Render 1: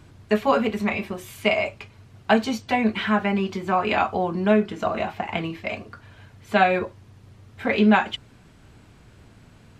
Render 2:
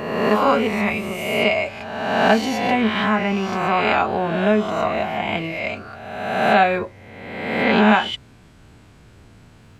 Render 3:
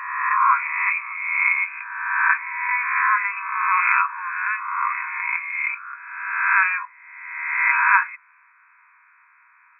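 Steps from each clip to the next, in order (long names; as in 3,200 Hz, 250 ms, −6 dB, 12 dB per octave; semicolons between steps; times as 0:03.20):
peak hold with a rise ahead of every peak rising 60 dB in 1.36 s
linear-phase brick-wall band-pass 930–2,600 Hz; level +4.5 dB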